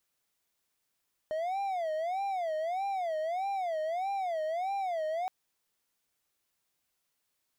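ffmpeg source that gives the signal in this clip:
-f lavfi -i "aevalsrc='0.0398*(1-4*abs(mod((708*t-88/(2*PI*1.6)*sin(2*PI*1.6*t))+0.25,1)-0.5))':d=3.97:s=44100"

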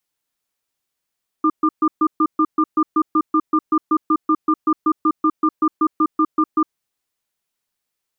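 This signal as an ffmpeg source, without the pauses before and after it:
-f lavfi -i "aevalsrc='0.178*(sin(2*PI*313*t)+sin(2*PI*1200*t))*clip(min(mod(t,0.19),0.06-mod(t,0.19))/0.005,0,1)':d=5.31:s=44100"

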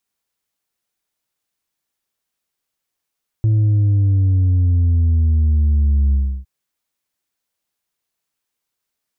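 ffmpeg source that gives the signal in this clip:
-f lavfi -i "aevalsrc='0.251*clip((3.01-t)/0.32,0,1)*tanh(1.41*sin(2*PI*110*3.01/log(65/110)*(exp(log(65/110)*t/3.01)-1)))/tanh(1.41)':d=3.01:s=44100"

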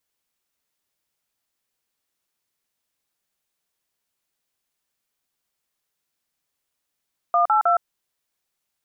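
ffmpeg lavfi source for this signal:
-f lavfi -i "aevalsrc='0.133*clip(min(mod(t,0.157),0.115-mod(t,0.157))/0.002,0,1)*(eq(floor(t/0.157),0)*(sin(2*PI*697*mod(t,0.157))+sin(2*PI*1209*mod(t,0.157)))+eq(floor(t/0.157),1)*(sin(2*PI*852*mod(t,0.157))+sin(2*PI*1336*mod(t,0.157)))+eq(floor(t/0.157),2)*(sin(2*PI*697*mod(t,0.157))+sin(2*PI*1336*mod(t,0.157))))':d=0.471:s=44100"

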